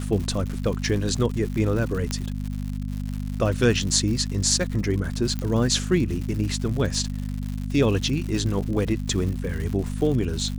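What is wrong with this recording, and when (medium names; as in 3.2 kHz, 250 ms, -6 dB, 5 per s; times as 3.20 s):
crackle 180 per s -30 dBFS
hum 50 Hz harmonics 5 -29 dBFS
2.11 s: pop -12 dBFS
5.39 s: pop -16 dBFS
8.65–8.66 s: dropout 6.7 ms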